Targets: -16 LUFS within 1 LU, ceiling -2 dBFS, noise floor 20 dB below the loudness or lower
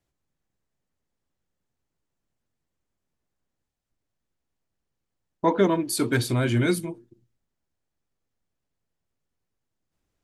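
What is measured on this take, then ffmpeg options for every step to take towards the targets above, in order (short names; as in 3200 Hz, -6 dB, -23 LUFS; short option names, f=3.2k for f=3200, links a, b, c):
loudness -24.0 LUFS; peak -9.0 dBFS; loudness target -16.0 LUFS
-> -af "volume=8dB,alimiter=limit=-2dB:level=0:latency=1"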